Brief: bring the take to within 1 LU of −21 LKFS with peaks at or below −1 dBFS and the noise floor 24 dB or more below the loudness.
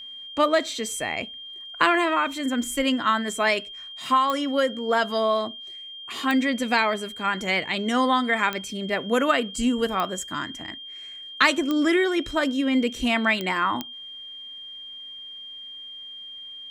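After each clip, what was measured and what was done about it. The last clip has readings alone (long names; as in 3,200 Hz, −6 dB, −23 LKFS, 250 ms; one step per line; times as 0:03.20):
number of clicks 7; interfering tone 3,200 Hz; level of the tone −37 dBFS; integrated loudness −23.5 LKFS; sample peak −4.5 dBFS; target loudness −21.0 LKFS
→ click removal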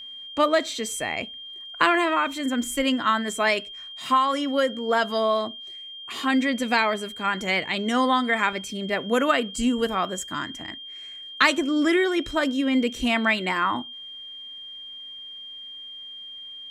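number of clicks 0; interfering tone 3,200 Hz; level of the tone −37 dBFS
→ notch filter 3,200 Hz, Q 30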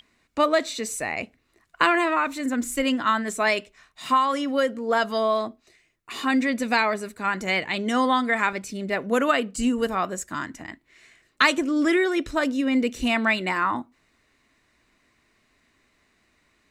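interfering tone none found; integrated loudness −24.0 LKFS; sample peak −4.5 dBFS; target loudness −21.0 LKFS
→ level +3 dB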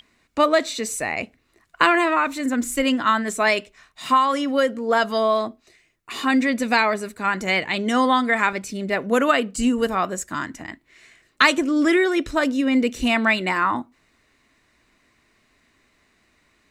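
integrated loudness −21.0 LKFS; sample peak −1.5 dBFS; background noise floor −64 dBFS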